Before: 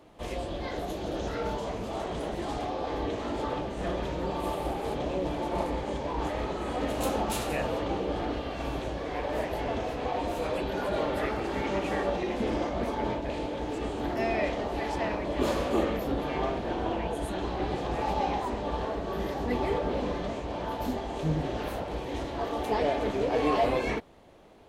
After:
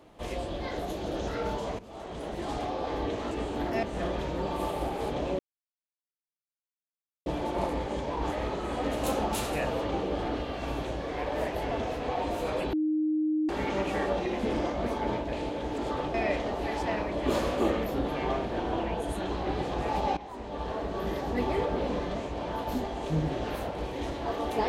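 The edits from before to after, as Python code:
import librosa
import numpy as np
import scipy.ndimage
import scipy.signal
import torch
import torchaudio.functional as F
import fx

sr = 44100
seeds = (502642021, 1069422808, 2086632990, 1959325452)

y = fx.edit(x, sr, fx.fade_in_from(start_s=1.79, length_s=0.74, floor_db=-16.0),
    fx.swap(start_s=3.31, length_s=0.36, other_s=13.75, other_length_s=0.52),
    fx.insert_silence(at_s=5.23, length_s=1.87),
    fx.bleep(start_s=10.7, length_s=0.76, hz=309.0, db=-24.0),
    fx.fade_in_from(start_s=18.3, length_s=0.71, floor_db=-16.5), tone=tone)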